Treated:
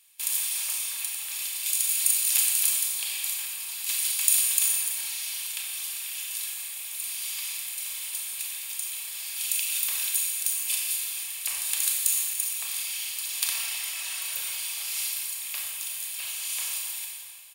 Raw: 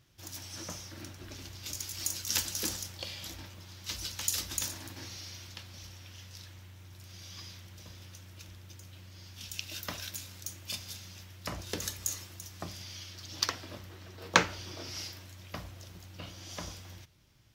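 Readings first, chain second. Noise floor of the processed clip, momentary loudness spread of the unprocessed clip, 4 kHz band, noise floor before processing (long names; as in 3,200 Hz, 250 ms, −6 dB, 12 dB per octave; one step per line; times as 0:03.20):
−37 dBFS, 18 LU, +6.5 dB, −52 dBFS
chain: compressor on every frequency bin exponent 0.4
noise gate with hold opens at −24 dBFS
first-order pre-emphasis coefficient 0.97
healed spectral selection 0:13.57–0:14.47, 570–11,000 Hz
reverb reduction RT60 2 s
drawn EQ curve 120 Hz 0 dB, 200 Hz −20 dB, 470 Hz −13 dB, 760 Hz −3 dB, 1,500 Hz −11 dB, 2,600 Hz +4 dB, 6,100 Hz −11 dB, 8,800 Hz +7 dB, 13,000 Hz 0 dB
slap from a distant wall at 110 metres, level −15 dB
four-comb reverb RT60 1.8 s, combs from 28 ms, DRR −1 dB
level +4 dB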